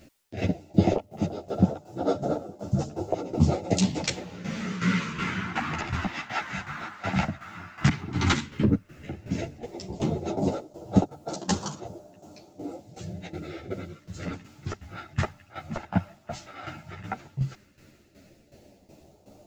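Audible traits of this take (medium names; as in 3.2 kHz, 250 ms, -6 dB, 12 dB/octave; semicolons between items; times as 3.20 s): phasing stages 2, 0.11 Hz, lowest notch 430–2000 Hz; a quantiser's noise floor 12-bit, dither triangular; tremolo saw down 2.7 Hz, depth 75%; a shimmering, thickened sound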